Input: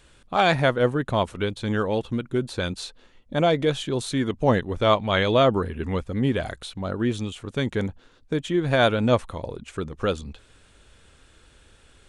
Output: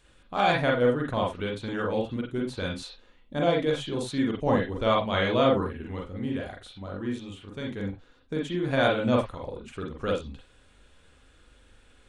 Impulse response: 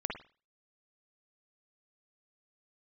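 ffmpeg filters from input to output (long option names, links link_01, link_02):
-filter_complex "[0:a]asettb=1/sr,asplit=3[link_01][link_02][link_03];[link_01]atrim=end=5.774[link_04];[link_02]atrim=start=5.77:end=7.89,asetpts=PTS-STARTPTS,afade=type=in:duration=0.004:curve=qsin,afade=type=out:start_time=2.116:duration=0.004:curve=qsin,flanger=delay=9.1:depth=2.4:regen=81:speed=1.1:shape=triangular[link_05];[link_03]atrim=start=7.886[link_06];[link_04][link_05]acrossfade=duration=0.004:curve1=hsin:curve2=qsin[link_07];[link_07][link_06]acrossfade=duration=0.004:curve1=qsin:curve2=hsin[link_08];[1:a]atrim=start_sample=2205,afade=type=out:start_time=0.18:duration=0.01,atrim=end_sample=8379,asetrate=52920,aresample=44100[link_09];[link_08][link_09]afir=irnorm=-1:irlink=0,volume=-4.5dB"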